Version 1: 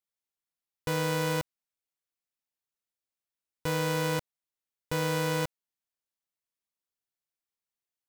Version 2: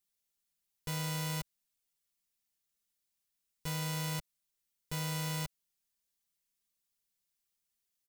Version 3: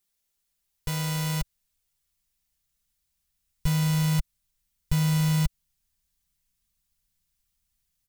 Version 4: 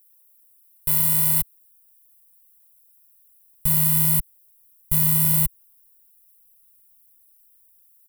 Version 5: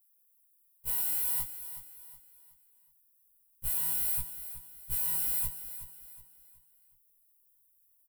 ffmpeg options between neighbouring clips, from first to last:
ffmpeg -i in.wav -af "equalizer=frequency=740:width=0.31:gain=-11,alimiter=level_in=9.5dB:limit=-24dB:level=0:latency=1,volume=-9.5dB,aecho=1:1:5:0.6,volume=8dB" out.wav
ffmpeg -i in.wav -af "asubboost=boost=11:cutoff=110,volume=6dB" out.wav
ffmpeg -i in.wav -af "aexciter=amount=14.8:drive=3.3:freq=8800,volume=-2.5dB" out.wav
ffmpeg -i in.wav -af "flanger=delay=17:depth=2.7:speed=2.4,aecho=1:1:370|740|1110|1480:0.251|0.0955|0.0363|0.0138,afftfilt=real='re*1.73*eq(mod(b,3),0)':imag='im*1.73*eq(mod(b,3),0)':win_size=2048:overlap=0.75,volume=-5dB" out.wav

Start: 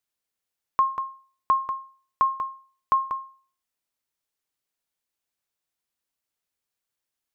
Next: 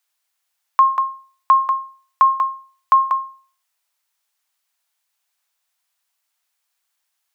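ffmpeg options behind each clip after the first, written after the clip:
ffmpeg -i in.wav -filter_complex "[0:a]highpass=frequency=700:width=0.5412,highpass=frequency=700:width=1.3066,asplit=2[link_01][link_02];[link_02]alimiter=limit=-22dB:level=0:latency=1,volume=-1dB[link_03];[link_01][link_03]amix=inputs=2:normalize=0,volume=5.5dB" out.wav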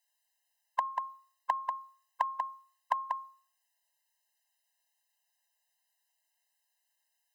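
ffmpeg -i in.wav -af "acompressor=threshold=-18dB:ratio=2.5,afftfilt=real='re*eq(mod(floor(b*sr/1024/530),2),1)':imag='im*eq(mod(floor(b*sr/1024/530),2),1)':win_size=1024:overlap=0.75,volume=-2.5dB" out.wav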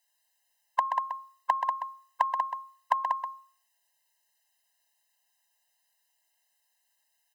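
ffmpeg -i in.wav -af "aecho=1:1:129:0.422,volume=4.5dB" out.wav

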